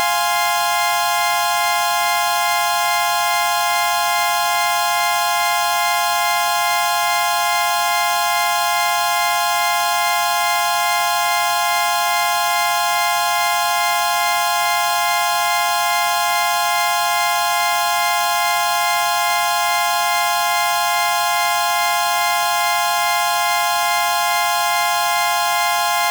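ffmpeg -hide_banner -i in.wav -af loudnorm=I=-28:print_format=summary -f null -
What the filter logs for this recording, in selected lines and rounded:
Input Integrated:    -16.5 LUFS
Input True Peak:      -6.0 dBTP
Input LRA:             0.0 LU
Input Threshold:     -26.5 LUFS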